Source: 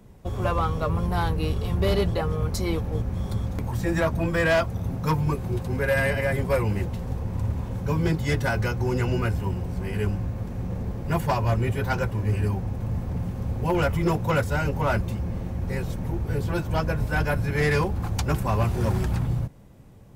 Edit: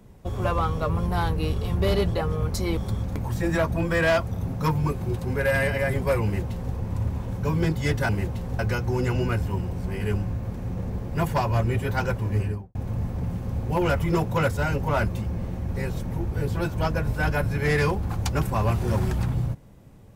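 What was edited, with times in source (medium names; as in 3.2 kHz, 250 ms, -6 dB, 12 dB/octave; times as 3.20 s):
2.77–3.20 s: delete
6.67–7.17 s: copy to 8.52 s
12.28–12.68 s: studio fade out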